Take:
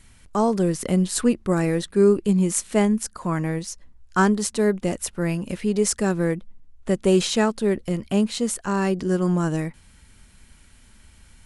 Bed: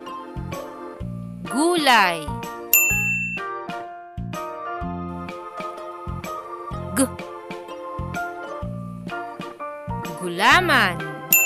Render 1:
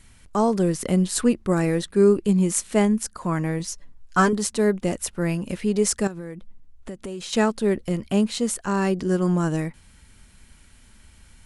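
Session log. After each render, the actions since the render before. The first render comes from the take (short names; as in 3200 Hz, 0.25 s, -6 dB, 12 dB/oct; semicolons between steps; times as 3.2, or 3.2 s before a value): 3.59–4.33 comb 6.9 ms, depth 67%; 6.07–7.33 compressor, threshold -31 dBFS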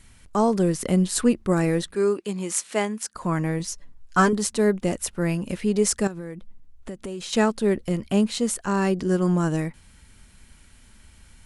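1.95–3.15 weighting filter A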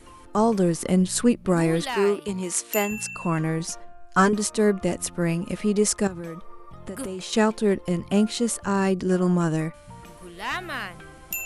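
add bed -15 dB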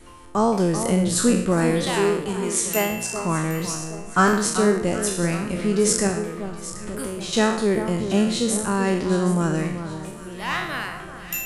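spectral trails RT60 0.71 s; echo with dull and thin repeats by turns 0.386 s, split 1500 Hz, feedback 62%, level -9 dB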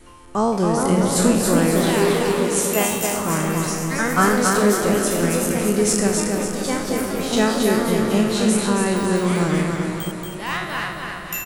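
feedback echo 0.275 s, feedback 47%, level -4 dB; echoes that change speed 0.479 s, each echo +3 st, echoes 2, each echo -6 dB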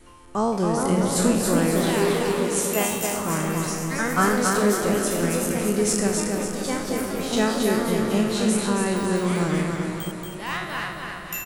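gain -3.5 dB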